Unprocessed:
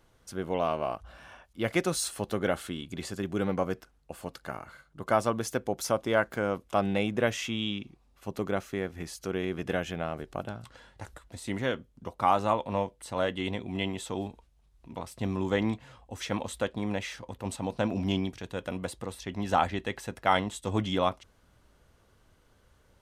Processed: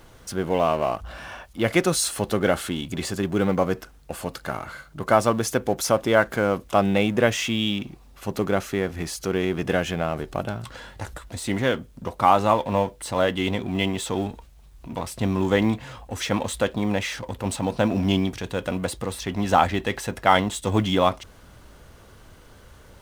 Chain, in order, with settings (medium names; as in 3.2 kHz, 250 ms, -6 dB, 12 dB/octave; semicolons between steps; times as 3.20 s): companding laws mixed up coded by mu; trim +6.5 dB